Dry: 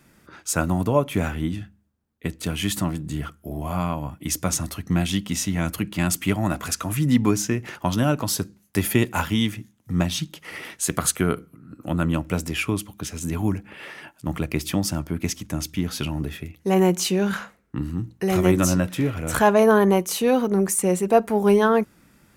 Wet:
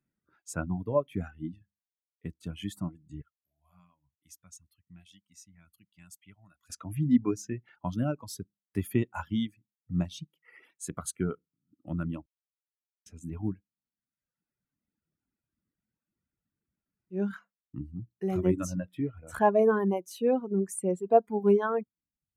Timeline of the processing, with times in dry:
3.22–6.70 s: amplifier tone stack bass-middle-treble 5-5-5
12.26–13.06 s: mute
13.65–17.15 s: room tone, crossfade 0.10 s
whole clip: reverb removal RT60 1.4 s; spectral contrast expander 1.5:1; trim -4.5 dB

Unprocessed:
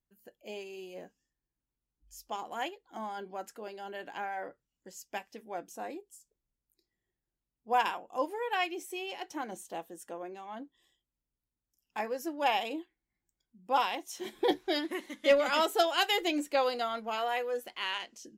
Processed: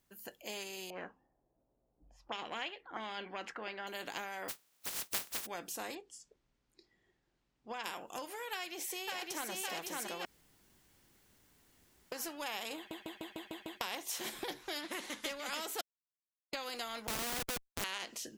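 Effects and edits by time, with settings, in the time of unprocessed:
0.90–3.87 s: touch-sensitive low-pass 620–2800 Hz up, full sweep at -36.5 dBFS
4.48–5.45 s: spectral contrast reduction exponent 0.11
5.95–7.84 s: distance through air 120 m
8.51–9.51 s: echo throw 560 ms, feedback 50%, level -3.5 dB
10.25–12.12 s: room tone
12.76 s: stutter in place 0.15 s, 7 plays
14.81–15.23 s: treble shelf 9.2 kHz -10.5 dB
15.81–16.53 s: mute
17.07–17.84 s: Schmitt trigger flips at -30.5 dBFS
whole clip: bass shelf 140 Hz -9.5 dB; compression 10:1, threshold -36 dBFS; spectrum-flattening compressor 2:1; trim +4.5 dB

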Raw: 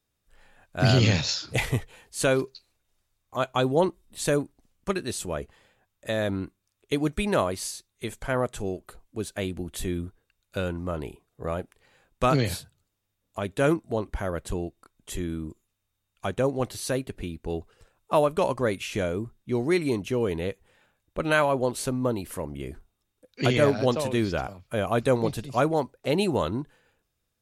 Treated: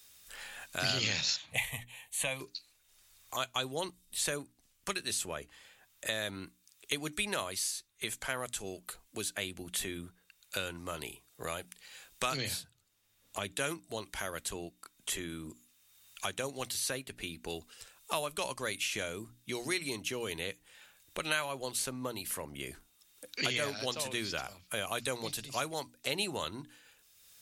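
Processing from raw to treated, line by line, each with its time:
1.36–2.41 s: static phaser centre 1.4 kHz, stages 6
12.37–13.57 s: tilt EQ -1.5 dB/octave
whole clip: tilt shelf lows -10 dB, about 1.4 kHz; hum notches 60/120/180/240/300 Hz; three bands compressed up and down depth 70%; trim -6 dB

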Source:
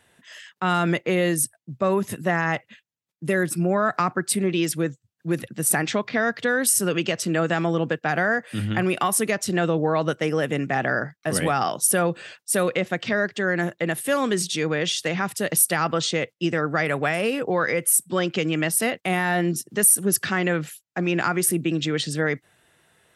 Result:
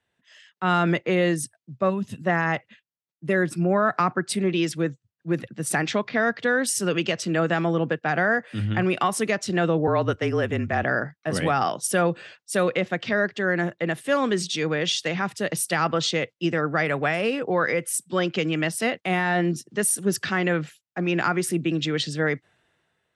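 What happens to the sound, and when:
1.90–2.21 s: time-frequency box 280–2500 Hz -10 dB
9.87–10.83 s: frequency shift -36 Hz
whole clip: low-pass 5.9 kHz 12 dB/octave; three bands expanded up and down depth 40%

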